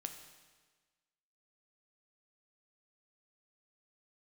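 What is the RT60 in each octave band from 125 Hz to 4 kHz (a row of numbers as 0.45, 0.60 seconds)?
1.4, 1.4, 1.4, 1.4, 1.4, 1.3 seconds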